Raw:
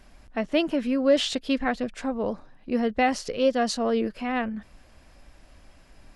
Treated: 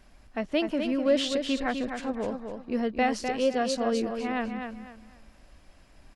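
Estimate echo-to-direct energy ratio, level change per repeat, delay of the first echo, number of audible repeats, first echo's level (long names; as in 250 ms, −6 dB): −6.0 dB, −10.5 dB, 253 ms, 3, −6.5 dB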